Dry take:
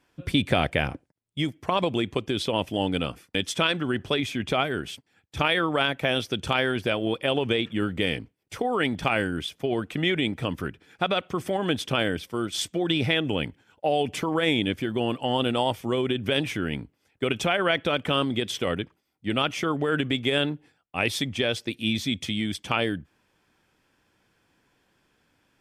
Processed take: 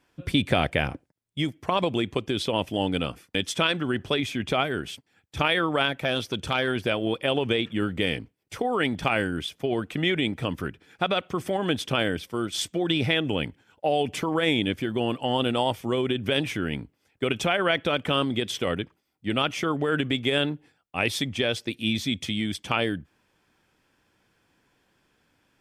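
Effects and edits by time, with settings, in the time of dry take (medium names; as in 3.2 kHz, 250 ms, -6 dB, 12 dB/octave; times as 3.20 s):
5.88–6.68 s: transformer saturation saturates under 710 Hz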